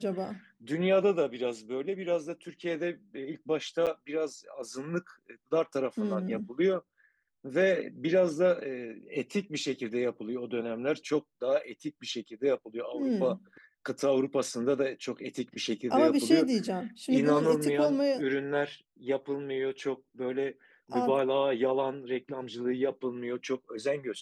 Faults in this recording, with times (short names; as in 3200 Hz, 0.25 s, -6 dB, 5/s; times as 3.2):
3.86–3.87 gap 7.7 ms